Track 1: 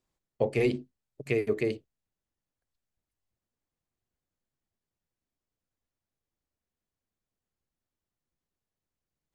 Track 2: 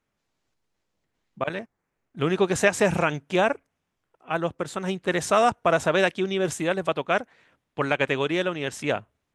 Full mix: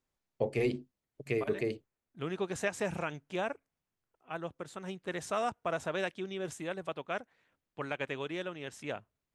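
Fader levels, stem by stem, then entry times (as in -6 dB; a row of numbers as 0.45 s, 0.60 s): -4.5 dB, -13.0 dB; 0.00 s, 0.00 s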